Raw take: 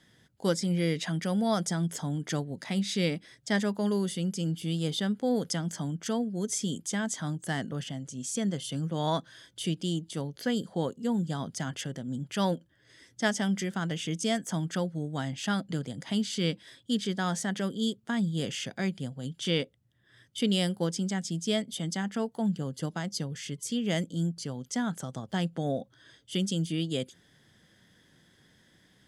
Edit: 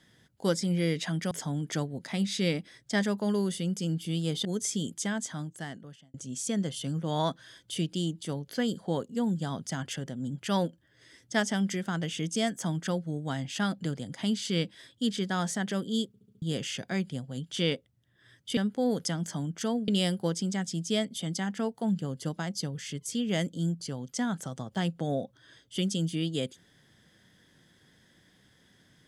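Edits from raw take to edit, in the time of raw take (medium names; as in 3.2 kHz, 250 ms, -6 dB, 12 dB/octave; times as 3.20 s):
1.31–1.88 s: delete
5.02–6.33 s: move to 20.45 s
6.90–8.02 s: fade out
17.95 s: stutter in place 0.07 s, 5 plays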